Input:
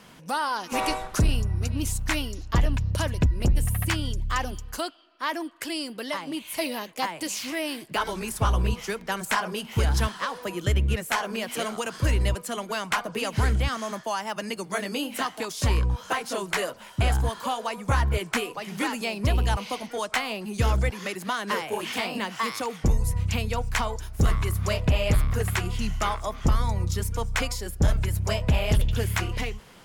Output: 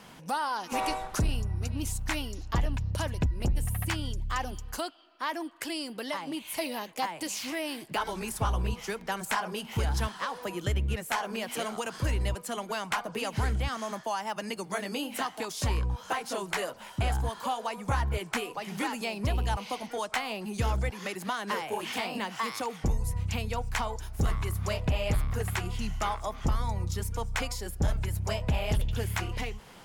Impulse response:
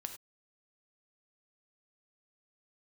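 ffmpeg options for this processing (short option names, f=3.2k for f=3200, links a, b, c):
-filter_complex "[0:a]equalizer=f=820:t=o:w=0.39:g=4.5,asplit=2[a][b];[b]acompressor=threshold=-34dB:ratio=6,volume=2.5dB[c];[a][c]amix=inputs=2:normalize=0,volume=-8dB"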